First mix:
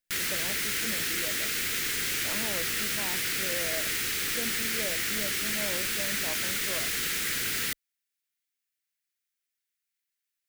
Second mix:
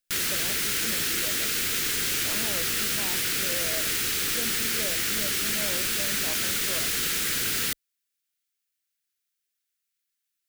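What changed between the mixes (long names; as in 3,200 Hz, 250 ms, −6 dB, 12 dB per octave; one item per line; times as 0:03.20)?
background +4.0 dB
master: add parametric band 2,000 Hz −5 dB 0.64 octaves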